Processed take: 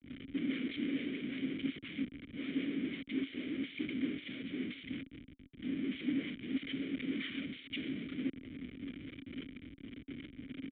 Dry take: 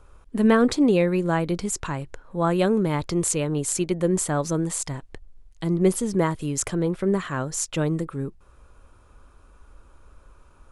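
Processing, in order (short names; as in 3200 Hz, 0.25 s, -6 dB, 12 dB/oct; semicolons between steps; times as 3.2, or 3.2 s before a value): zero-crossing step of -19.5 dBFS; expander -21 dBFS; de-hum 45.56 Hz, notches 2; whisperiser; transient shaper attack -2 dB, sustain -7 dB; dynamic EQ 2100 Hz, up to +3 dB, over -54 dBFS, Q 2.8; Schmitt trigger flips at -32.5 dBFS; vowel filter i; downsampling 8000 Hz; three-band expander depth 100%; gain -5 dB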